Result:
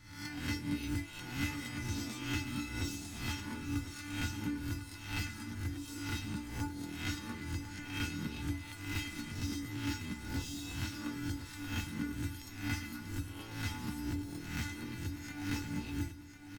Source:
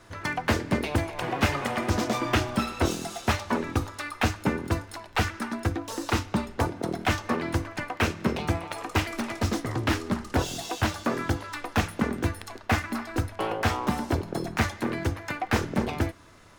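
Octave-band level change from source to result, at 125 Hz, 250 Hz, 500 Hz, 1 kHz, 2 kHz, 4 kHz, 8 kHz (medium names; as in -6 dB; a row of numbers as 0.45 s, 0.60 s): -9.5 dB, -9.5 dB, -22.0 dB, -19.0 dB, -11.5 dB, -8.5 dB, -7.5 dB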